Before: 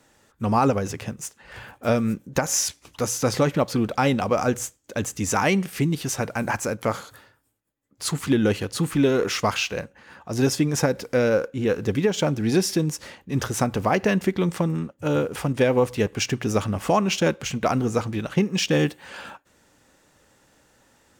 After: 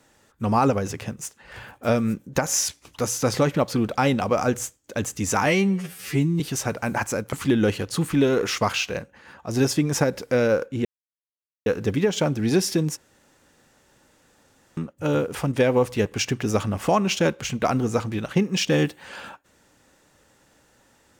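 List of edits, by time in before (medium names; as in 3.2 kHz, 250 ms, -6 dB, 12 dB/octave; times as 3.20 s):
5.46–5.93 s: stretch 2×
6.86–8.15 s: delete
11.67 s: insert silence 0.81 s
12.98–14.78 s: room tone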